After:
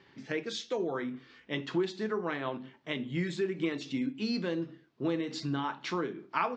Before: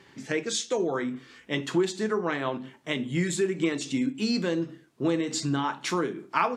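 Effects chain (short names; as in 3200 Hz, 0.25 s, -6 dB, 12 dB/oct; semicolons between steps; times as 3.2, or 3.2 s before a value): LPF 5100 Hz 24 dB/oct; gain -5.5 dB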